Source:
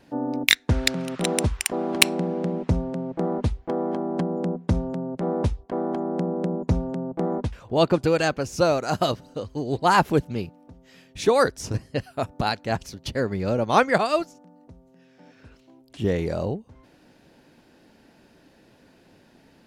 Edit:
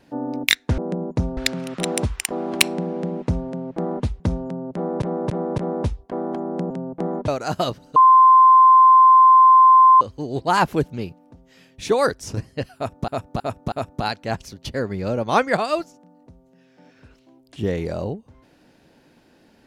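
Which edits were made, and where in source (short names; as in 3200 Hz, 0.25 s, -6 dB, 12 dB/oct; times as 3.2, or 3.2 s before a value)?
3.61–4.64 cut
5.18–5.46 loop, 4 plays
6.3–6.89 move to 0.78
7.47–8.7 cut
9.38 add tone 1040 Hz -7.5 dBFS 2.05 s
12.13–12.45 loop, 4 plays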